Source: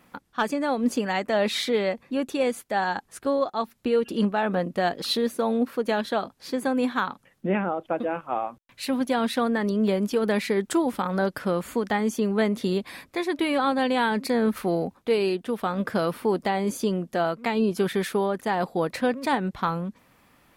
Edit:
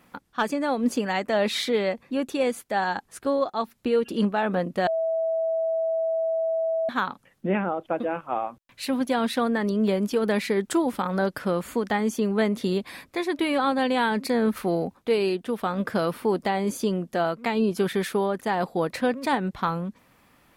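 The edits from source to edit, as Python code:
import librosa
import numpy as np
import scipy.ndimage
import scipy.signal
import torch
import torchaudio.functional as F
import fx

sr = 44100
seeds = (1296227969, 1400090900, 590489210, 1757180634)

y = fx.edit(x, sr, fx.bleep(start_s=4.87, length_s=2.02, hz=652.0, db=-22.0), tone=tone)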